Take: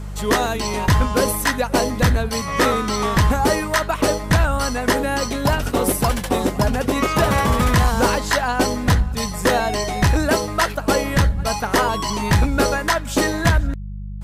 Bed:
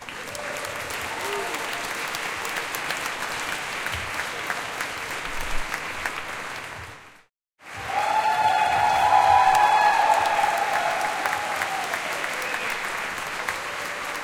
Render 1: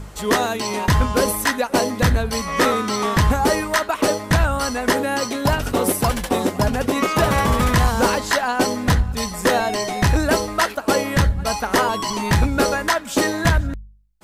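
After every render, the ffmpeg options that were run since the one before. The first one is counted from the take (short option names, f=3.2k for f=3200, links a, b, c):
-af "bandreject=f=50:t=h:w=4,bandreject=f=100:t=h:w=4,bandreject=f=150:t=h:w=4,bandreject=f=200:t=h:w=4"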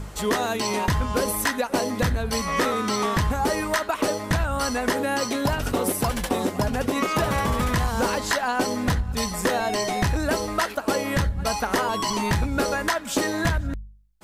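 -af "acompressor=threshold=-20dB:ratio=6"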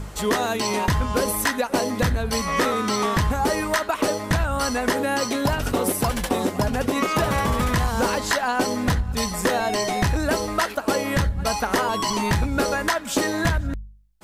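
-af "volume=1.5dB"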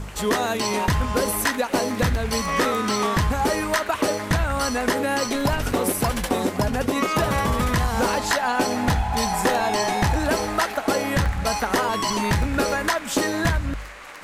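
-filter_complex "[1:a]volume=-10dB[a];[0:a][a]amix=inputs=2:normalize=0"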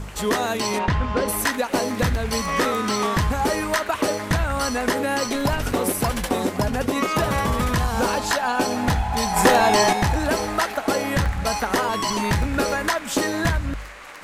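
-filter_complex "[0:a]asplit=3[a][b][c];[a]afade=t=out:st=0.78:d=0.02[d];[b]lowpass=3.6k,afade=t=in:st=0.78:d=0.02,afade=t=out:st=1.27:d=0.02[e];[c]afade=t=in:st=1.27:d=0.02[f];[d][e][f]amix=inputs=3:normalize=0,asettb=1/sr,asplit=3[g][h][i];[g]atrim=end=7.694[j];[h]atrim=start=7.69:end=8.84,asetpts=PTS-STARTPTS,afade=t=in:d=0.004:c=qsin,afade=t=out:st=1.146:d=0.004:c=qsin,bandreject=f=2k:w=12[k];[i]atrim=start=8.836[l];[j][k]acrossfade=d=0.004:c1=hsin:c2=qsin[m];[m][l]acrossfade=d=0.004:c1=qsin:c2=hsin,asettb=1/sr,asplit=3[n][o][p];[n]atrim=end=9.364[q];[o]atrim=start=9.36:end=9.93,asetpts=PTS-STARTPTS,afade=t=in:d=0.004:c=qsin,afade=t=out:st=0.566:d=0.004:c=qsin,acontrast=48[r];[p]atrim=start=9.926[s];[q][r]acrossfade=d=0.004:c1=hsin:c2=qsin[t];[t][s]acrossfade=d=0.004:c1=qsin:c2=hsin"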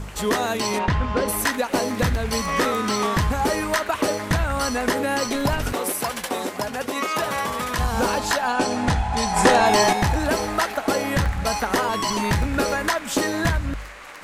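-filter_complex "[0:a]asettb=1/sr,asplit=3[a][b][c];[a]atrim=end=5.734[d];[b]atrim=start=5.73:end=7.79,asetpts=PTS-STARTPTS,afade=t=in:d=0.004:c=qsin,afade=t=out:st=2.056:d=0.004:c=qsin,highpass=f=540:p=1[e];[c]atrim=start=7.786[f];[d][e]acrossfade=d=0.004:c1=hsin:c2=qsin[g];[g][f]acrossfade=d=0.004:c1=qsin:c2=hsin,asettb=1/sr,asplit=3[h][i][j];[h]atrim=end=8.534[k];[i]atrim=start=8.53:end=9.66,asetpts=PTS-STARTPTS,afade=t=in:d=0.004:c=qsin,afade=t=out:st=1.126:d=0.004:c=qsin,lowpass=f=10k:w=0.5412,lowpass=f=10k:w=1.3066[l];[j]atrim=start=9.656[m];[k][l]acrossfade=d=0.004:c1=hsin:c2=qsin[n];[n][m]acrossfade=d=0.004:c1=qsin:c2=hsin"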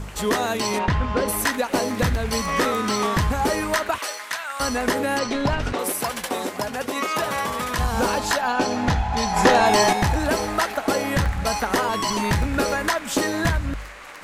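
-filter_complex "[0:a]asettb=1/sr,asplit=3[a][b][c];[a]atrim=end=3.984[d];[b]atrim=start=3.98:end=4.6,asetpts=PTS-STARTPTS,afade=t=in:d=0.004:c=qsin,afade=t=out:st=0.616:d=0.004:c=qsin,highpass=1.2k[e];[c]atrim=start=4.596[f];[d][e]acrossfade=d=0.004:c1=hsin:c2=qsin[g];[g][f]acrossfade=d=0.004:c1=qsin:c2=hsin,asettb=1/sr,asplit=3[h][i][j];[h]atrim=end=5.194[k];[i]atrim=start=5.19:end=5.79,asetpts=PTS-STARTPTS,afade=t=in:d=0.004:c=qsin,afade=t=out:st=0.596:d=0.004:c=qsin,lowpass=5.1k[l];[j]atrim=start=5.786[m];[k][l]acrossfade=d=0.004:c1=hsin:c2=qsin[n];[n][m]acrossfade=d=0.004:c1=qsin:c2=hsin,asettb=1/sr,asplit=3[o][p][q];[o]atrim=end=8.414[r];[p]atrim=start=8.41:end=9.56,asetpts=PTS-STARTPTS,afade=t=in:d=0.004:c=qsin,afade=t=out:st=1.146:d=0.004:c=qsin,equalizer=f=8.8k:t=o:w=0.26:g=-14.5[s];[q]atrim=start=9.556[t];[r][s]acrossfade=d=0.004:c1=hsin:c2=qsin[u];[u][t]acrossfade=d=0.004:c1=qsin:c2=hsin"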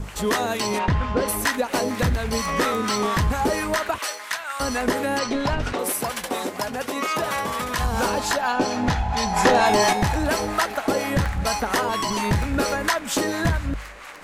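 -filter_complex "[0:a]acrossover=split=740[a][b];[a]aeval=exprs='val(0)*(1-0.5/2+0.5/2*cos(2*PI*4.3*n/s))':c=same[c];[b]aeval=exprs='val(0)*(1-0.5/2-0.5/2*cos(2*PI*4.3*n/s))':c=same[d];[c][d]amix=inputs=2:normalize=0,asplit=2[e][f];[f]asoftclip=type=tanh:threshold=-18.5dB,volume=-11dB[g];[e][g]amix=inputs=2:normalize=0"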